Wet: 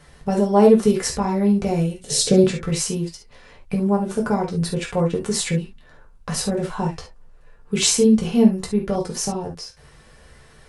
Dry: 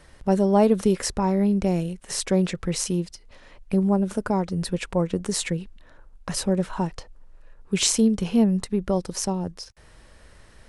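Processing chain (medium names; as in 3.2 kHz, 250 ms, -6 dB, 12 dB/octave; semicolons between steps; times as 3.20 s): 2.01–2.44 s: graphic EQ 125/250/500/1000/2000/4000/8000 Hz +10/+4/+9/-11/-6/+9/+4 dB; reverberation, pre-delay 3 ms, DRR -1.5 dB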